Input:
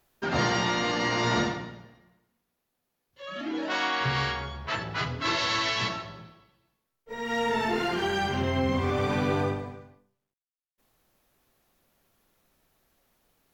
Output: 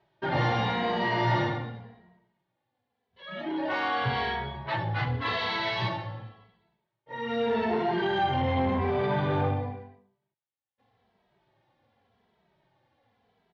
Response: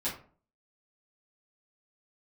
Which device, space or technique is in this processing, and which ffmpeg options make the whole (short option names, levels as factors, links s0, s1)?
barber-pole flanger into a guitar amplifier: -filter_complex "[0:a]asplit=2[s0][s1];[s1]adelay=2.7,afreqshift=-0.88[s2];[s0][s2]amix=inputs=2:normalize=1,asoftclip=type=tanh:threshold=0.0501,highpass=93,equalizer=f=110:t=q:w=4:g=8,equalizer=f=290:t=q:w=4:g=-4,equalizer=f=830:t=q:w=4:g=6,equalizer=f=1300:t=q:w=4:g=-7,equalizer=f=2600:t=q:w=4:g=-6,lowpass=f=3500:w=0.5412,lowpass=f=3500:w=1.3066,volume=1.88"